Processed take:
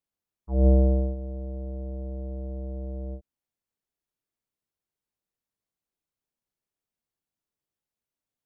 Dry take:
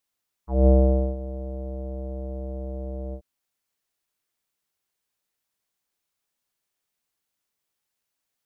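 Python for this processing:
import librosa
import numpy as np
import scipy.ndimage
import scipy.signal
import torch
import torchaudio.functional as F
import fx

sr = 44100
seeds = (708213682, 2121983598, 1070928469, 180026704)

y = fx.tilt_shelf(x, sr, db=6.0, hz=710.0)
y = y * 10.0 ** (-6.5 / 20.0)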